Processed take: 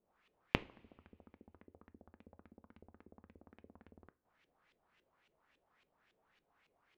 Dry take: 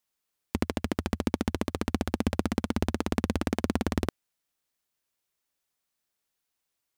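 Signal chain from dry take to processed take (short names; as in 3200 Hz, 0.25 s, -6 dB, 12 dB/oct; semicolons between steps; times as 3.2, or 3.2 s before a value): in parallel at +1.5 dB: negative-ratio compressor -35 dBFS, ratio -1; on the sum: flipped gate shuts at -22 dBFS, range -38 dB; LFO low-pass saw up 3.6 Hz 360–3000 Hz; two-slope reverb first 0.33 s, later 1.8 s, from -18 dB, DRR 14.5 dB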